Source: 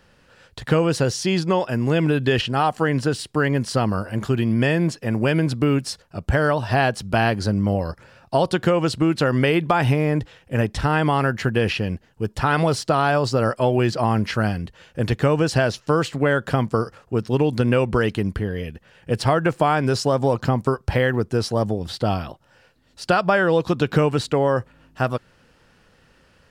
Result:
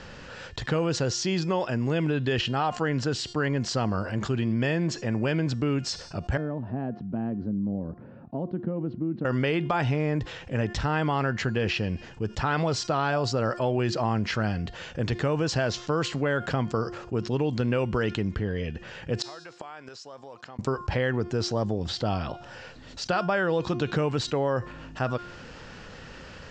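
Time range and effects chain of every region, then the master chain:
6.37–9.25 band-pass 230 Hz, Q 2.2 + air absorption 260 m
19.22–20.59 HPF 900 Hz 6 dB/oct + flipped gate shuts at -20 dBFS, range -30 dB
whole clip: steep low-pass 7600 Hz 72 dB/oct; de-hum 353.3 Hz, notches 29; fast leveller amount 50%; gain -9 dB

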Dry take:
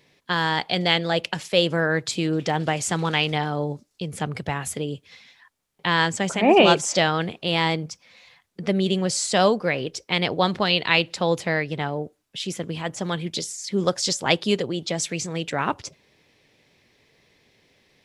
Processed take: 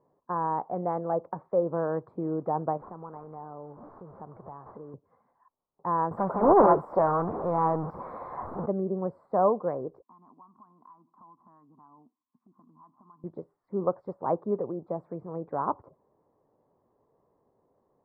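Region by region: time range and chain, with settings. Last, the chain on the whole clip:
2.77–4.94 delta modulation 32 kbps, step -31.5 dBFS + compressor 3:1, threshold -36 dBFS + high shelf 3400 Hz +9.5 dB
6.11–8.66 zero-crossing step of -21 dBFS + high shelf 2900 Hz +11.5 dB + Doppler distortion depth 0.45 ms
10.02–13.24 double band-pass 510 Hz, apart 2.1 oct + compressor 8:1, threshold -47 dBFS
whole clip: elliptic low-pass 1100 Hz, stop band 60 dB; low shelf 380 Hz -11 dB

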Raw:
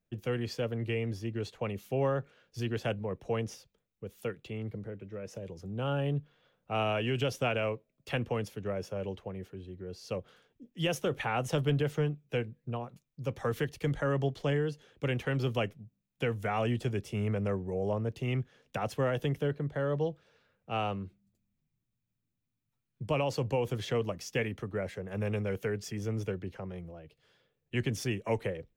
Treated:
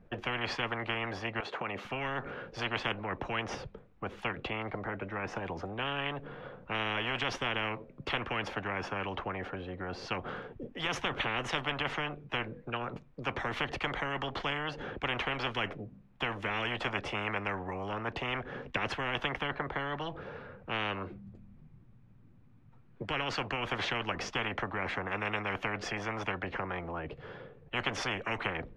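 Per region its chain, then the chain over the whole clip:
1.4–1.85 HPF 520 Hz + compressor 5:1, threshold -46 dBFS
whole clip: LPF 1300 Hz 12 dB/oct; notch 640 Hz, Q 14; spectral compressor 10:1; gain +4.5 dB

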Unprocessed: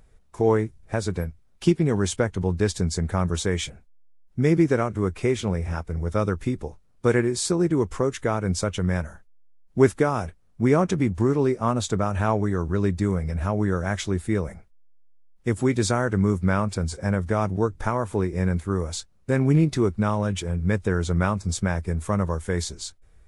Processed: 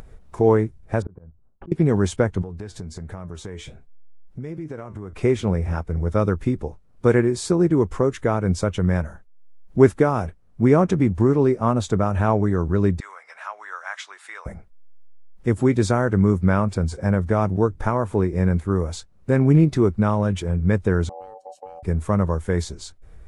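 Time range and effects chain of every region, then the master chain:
1.02–1.72 gate with hold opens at -50 dBFS, closes at -54 dBFS + LPF 1300 Hz 24 dB/oct + auto swell 0.615 s
2.42–5.13 flange 1.3 Hz, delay 6 ms, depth 3.5 ms, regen +72% + compressor, threshold -33 dBFS
13–14.46 HPF 990 Hz 24 dB/oct + air absorption 51 m
21.09–21.83 passive tone stack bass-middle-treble 10-0-1 + notch comb 1400 Hz + ring modulator 660 Hz
whole clip: high shelf 2100 Hz -9 dB; upward compressor, threshold -37 dBFS; gain +4 dB

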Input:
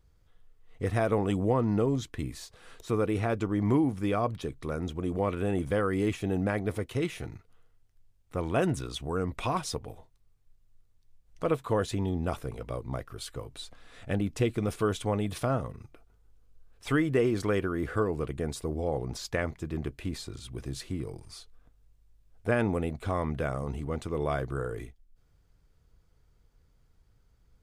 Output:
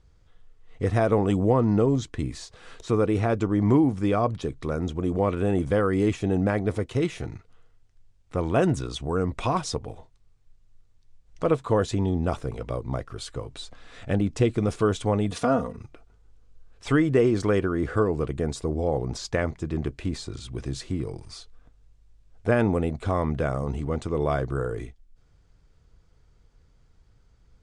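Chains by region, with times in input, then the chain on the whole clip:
15.31–15.77 HPF 79 Hz + comb 4.2 ms, depth 77%
whole clip: LPF 8300 Hz 24 dB/oct; dynamic EQ 2500 Hz, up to -4 dB, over -49 dBFS, Q 0.73; gain +5.5 dB

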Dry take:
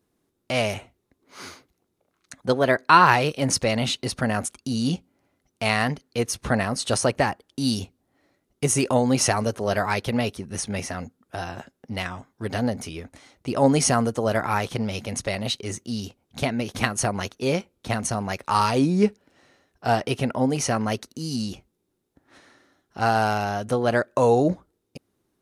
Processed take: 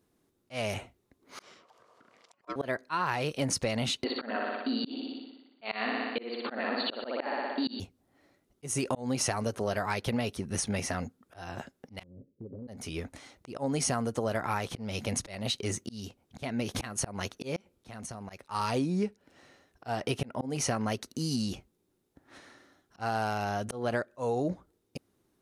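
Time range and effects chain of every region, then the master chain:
1.42–2.56 upward compressor, threshold -43 dBFS + ring modulator 830 Hz + BPF 130–6000 Hz
4.04–7.8 brick-wall FIR band-pass 220–4700 Hz + flutter echo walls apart 10.3 m, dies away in 0.93 s
12.03–12.68 Chebyshev low-pass 550 Hz, order 6 + low shelf 72 Hz -10 dB + compressor 10:1, threshold -39 dBFS
17.56–18.3 compressor 8:1, threshold -38 dBFS + auto swell 0.108 s
whole clip: auto swell 0.323 s; compressor 6:1, threshold -27 dBFS

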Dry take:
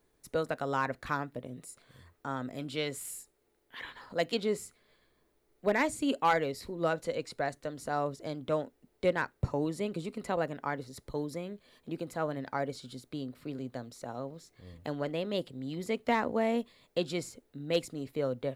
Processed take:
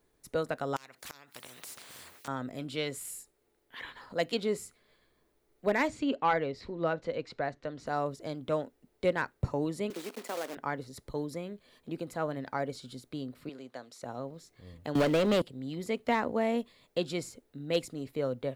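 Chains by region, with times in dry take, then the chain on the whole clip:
0.76–2.28 HPF 780 Hz 6 dB/oct + flipped gate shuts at -26 dBFS, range -24 dB + spectral compressor 4:1
5.88–7.87 air absorption 180 m + mismatched tape noise reduction encoder only
9.9–10.57 block floating point 3-bit + HPF 260 Hz 24 dB/oct + compressor 2.5:1, threshold -33 dBFS
13.49–14.03 weighting filter A + mismatched tape noise reduction decoder only
14.95–15.42 sample leveller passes 3 + three-band squash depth 100%
whole clip: dry

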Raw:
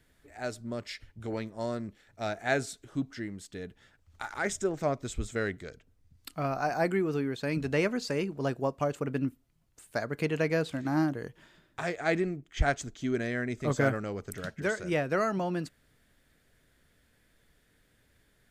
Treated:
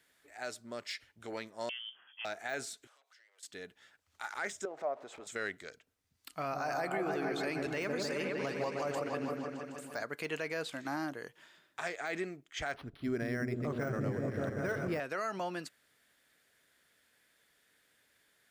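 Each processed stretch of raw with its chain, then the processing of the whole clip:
1.69–2.25 compressor, threshold -40 dBFS + doubler 15 ms -8 dB + inverted band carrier 3300 Hz
2.87–3.43 steep high-pass 500 Hz 48 dB/oct + compressor 20:1, threshold -59 dBFS + core saturation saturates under 3900 Hz
4.65–5.27 zero-crossing step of -42.5 dBFS + band-pass 660 Hz, Q 2 + upward compressor, threshold -33 dBFS
6.29–10.03 low shelf 120 Hz +8.5 dB + repeats that get brighter 0.154 s, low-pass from 750 Hz, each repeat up 1 oct, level -3 dB
12.74–15 RIAA curve playback + repeats that get brighter 0.193 s, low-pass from 200 Hz, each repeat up 1 oct, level 0 dB + decimation joined by straight lines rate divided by 6×
whole clip: HPF 920 Hz 6 dB/oct; de-esser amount 95%; limiter -26.5 dBFS; gain +1 dB

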